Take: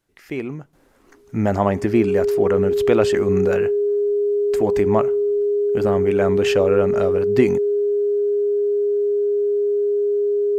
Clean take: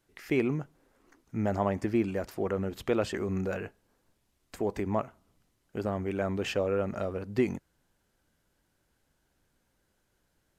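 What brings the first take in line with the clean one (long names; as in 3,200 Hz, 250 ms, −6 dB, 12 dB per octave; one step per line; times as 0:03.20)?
notch filter 410 Hz, Q 30
level correction −10 dB, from 0:00.73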